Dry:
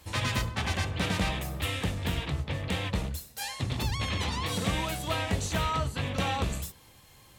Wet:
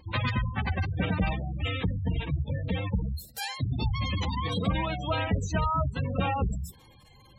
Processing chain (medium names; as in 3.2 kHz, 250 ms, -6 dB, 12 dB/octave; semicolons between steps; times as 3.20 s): wow and flutter 21 cents; spectral gate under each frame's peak -15 dB strong; trim +3 dB